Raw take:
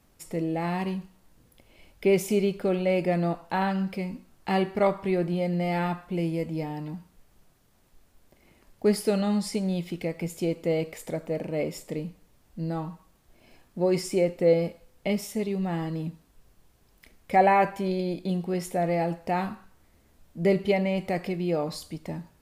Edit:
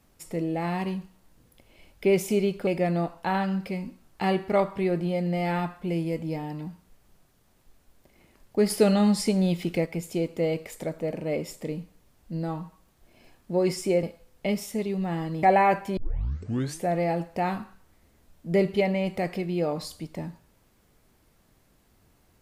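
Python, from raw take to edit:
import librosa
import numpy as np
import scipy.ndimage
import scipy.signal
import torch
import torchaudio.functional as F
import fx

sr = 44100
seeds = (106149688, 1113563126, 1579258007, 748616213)

y = fx.edit(x, sr, fx.cut(start_s=2.67, length_s=0.27),
    fx.clip_gain(start_s=8.97, length_s=1.16, db=4.5),
    fx.cut(start_s=14.3, length_s=0.34),
    fx.cut(start_s=16.04, length_s=1.3),
    fx.tape_start(start_s=17.88, length_s=0.89), tone=tone)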